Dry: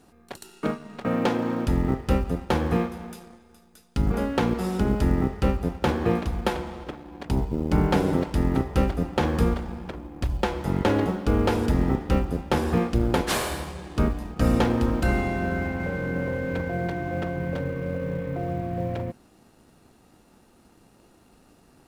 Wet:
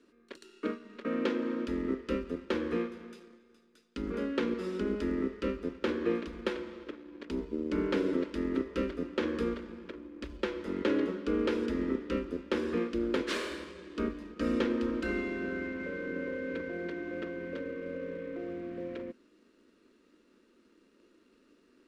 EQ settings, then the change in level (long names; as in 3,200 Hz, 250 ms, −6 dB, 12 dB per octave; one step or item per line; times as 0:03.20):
three-way crossover with the lows and the highs turned down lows −16 dB, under 210 Hz, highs −22 dB, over 7,800 Hz
parametric band 7,800 Hz −8 dB 2.1 octaves
phaser with its sweep stopped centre 320 Hz, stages 4
−2.5 dB